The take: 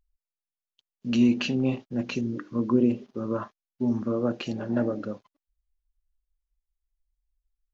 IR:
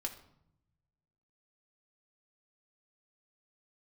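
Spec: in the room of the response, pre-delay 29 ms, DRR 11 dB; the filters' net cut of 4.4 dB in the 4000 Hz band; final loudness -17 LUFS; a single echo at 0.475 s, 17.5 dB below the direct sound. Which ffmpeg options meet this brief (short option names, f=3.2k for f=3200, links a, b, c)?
-filter_complex "[0:a]equalizer=f=4k:t=o:g=-7,aecho=1:1:475:0.133,asplit=2[a][b];[1:a]atrim=start_sample=2205,adelay=29[c];[b][c]afir=irnorm=-1:irlink=0,volume=-10.5dB[d];[a][d]amix=inputs=2:normalize=0,volume=9dB"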